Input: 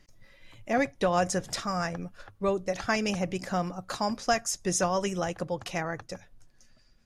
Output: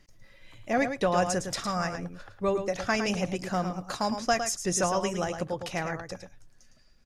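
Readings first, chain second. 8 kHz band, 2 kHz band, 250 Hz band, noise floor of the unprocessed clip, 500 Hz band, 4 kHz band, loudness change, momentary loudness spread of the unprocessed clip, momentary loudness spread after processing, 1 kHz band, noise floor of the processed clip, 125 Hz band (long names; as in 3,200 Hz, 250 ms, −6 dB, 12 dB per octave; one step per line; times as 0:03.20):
+0.5 dB, +0.5 dB, +0.5 dB, −60 dBFS, +0.5 dB, +0.5 dB, +0.5 dB, 10 LU, 9 LU, +0.5 dB, −58 dBFS, +0.5 dB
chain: single-tap delay 109 ms −8 dB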